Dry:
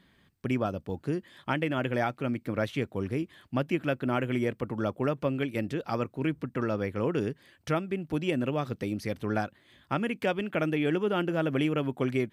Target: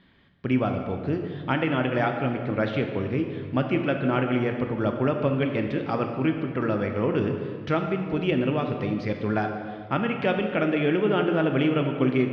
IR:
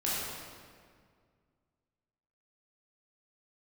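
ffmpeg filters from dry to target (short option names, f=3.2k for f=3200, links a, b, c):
-filter_complex "[0:a]lowpass=f=4.2k:w=0.5412,lowpass=f=4.2k:w=1.3066,asplit=2[a][b];[1:a]atrim=start_sample=2205[c];[b][c]afir=irnorm=-1:irlink=0,volume=-9dB[d];[a][d]amix=inputs=2:normalize=0,volume=1dB"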